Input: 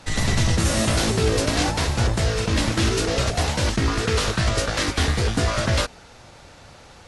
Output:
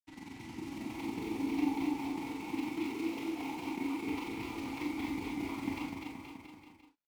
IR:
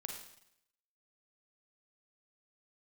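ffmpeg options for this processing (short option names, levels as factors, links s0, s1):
-filter_complex "[0:a]asettb=1/sr,asplit=3[s0][s1][s2];[s0]atrim=end=1.854[s3];[s1]atrim=start=1.85:end=4.03,asetpts=PTS-STARTPTS,afade=t=in:d=0.004:c=qsin,afade=t=out:st=2.176:d=0.004:c=qsin,highpass=f=230:p=1[s4];[s2]atrim=start=4.026[s5];[s3][s4]acrossfade=d=0.004:c1=hsin:c2=qsin[s6];[s6][s5]acrossfade=d=0.004:c1=qsin:c2=hsin,dynaudnorm=f=160:g=11:m=2.99,asplit=3[s7][s8][s9];[s7]bandpass=f=300:t=q:w=8,volume=1[s10];[s8]bandpass=f=870:t=q:w=8,volume=0.501[s11];[s9]bandpass=f=2240:t=q:w=8,volume=0.355[s12];[s10][s11][s12]amix=inputs=3:normalize=0,acrusher=bits=6:mix=0:aa=0.5,tremolo=f=22:d=0.889,aecho=1:1:250|475|677.5|859.8|1024:0.631|0.398|0.251|0.158|0.1[s13];[1:a]atrim=start_sample=2205,afade=t=out:st=0.15:d=0.01,atrim=end_sample=7056,asetrate=70560,aresample=44100[s14];[s13][s14]afir=irnorm=-1:irlink=0"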